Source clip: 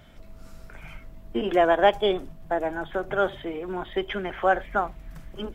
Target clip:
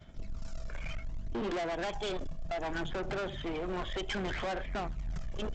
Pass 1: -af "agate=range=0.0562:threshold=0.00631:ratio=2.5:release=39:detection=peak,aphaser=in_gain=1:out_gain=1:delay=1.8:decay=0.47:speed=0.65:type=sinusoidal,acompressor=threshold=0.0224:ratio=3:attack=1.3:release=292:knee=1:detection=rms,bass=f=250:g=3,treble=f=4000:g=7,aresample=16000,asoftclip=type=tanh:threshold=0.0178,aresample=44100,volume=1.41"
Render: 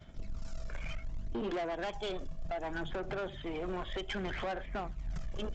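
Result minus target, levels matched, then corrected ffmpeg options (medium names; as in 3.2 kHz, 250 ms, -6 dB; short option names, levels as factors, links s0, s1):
compression: peak gain reduction +6 dB
-af "agate=range=0.0562:threshold=0.00631:ratio=2.5:release=39:detection=peak,aphaser=in_gain=1:out_gain=1:delay=1.8:decay=0.47:speed=0.65:type=sinusoidal,acompressor=threshold=0.0631:ratio=3:attack=1.3:release=292:knee=1:detection=rms,bass=f=250:g=3,treble=f=4000:g=7,aresample=16000,asoftclip=type=tanh:threshold=0.0178,aresample=44100,volume=1.41"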